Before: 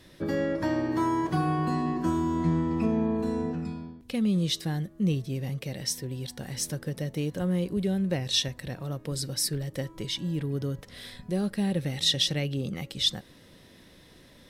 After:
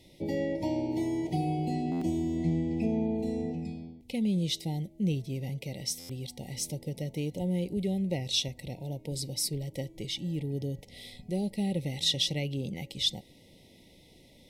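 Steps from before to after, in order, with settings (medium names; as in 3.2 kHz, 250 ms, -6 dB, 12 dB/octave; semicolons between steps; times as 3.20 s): brick-wall FIR band-stop 950–1900 Hz; buffer glitch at 1.91/5.99 s, samples 512, times 8; trim -3 dB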